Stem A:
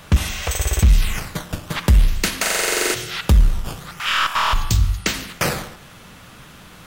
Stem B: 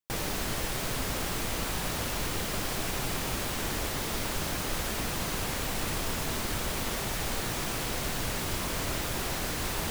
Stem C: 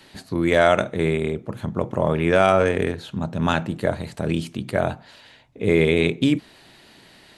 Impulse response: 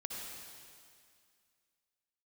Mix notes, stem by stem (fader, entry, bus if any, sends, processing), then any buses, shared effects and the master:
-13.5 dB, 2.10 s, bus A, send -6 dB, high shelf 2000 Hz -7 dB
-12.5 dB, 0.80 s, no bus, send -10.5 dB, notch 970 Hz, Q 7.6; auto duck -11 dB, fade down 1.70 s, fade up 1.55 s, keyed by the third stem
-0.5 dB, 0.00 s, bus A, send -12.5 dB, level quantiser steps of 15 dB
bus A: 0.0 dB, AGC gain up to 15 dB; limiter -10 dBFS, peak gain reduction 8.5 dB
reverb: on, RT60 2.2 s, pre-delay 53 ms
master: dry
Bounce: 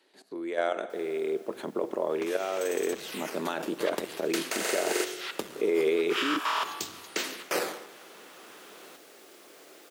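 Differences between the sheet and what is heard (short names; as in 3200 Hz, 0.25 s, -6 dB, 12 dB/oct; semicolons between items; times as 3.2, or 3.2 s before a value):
stem A: missing high shelf 2000 Hz -7 dB; master: extra ladder high-pass 310 Hz, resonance 45%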